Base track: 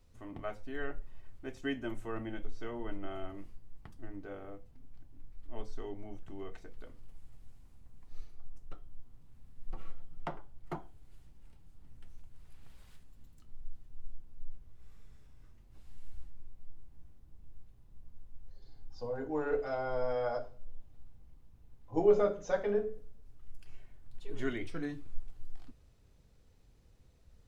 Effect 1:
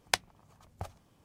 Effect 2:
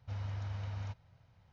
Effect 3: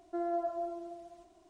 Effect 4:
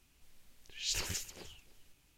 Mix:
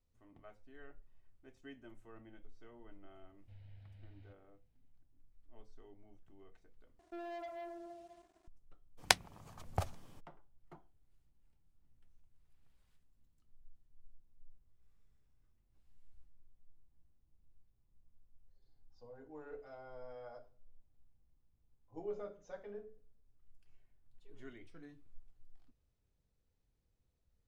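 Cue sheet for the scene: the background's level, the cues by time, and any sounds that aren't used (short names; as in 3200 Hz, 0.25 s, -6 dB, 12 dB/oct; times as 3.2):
base track -17 dB
3.4 add 2 -17.5 dB + fixed phaser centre 2700 Hz, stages 4
6.99 replace with 3 -16.5 dB + sample leveller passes 3
8.97 add 1 -0.5 dB, fades 0.02 s + maximiser +5.5 dB
not used: 4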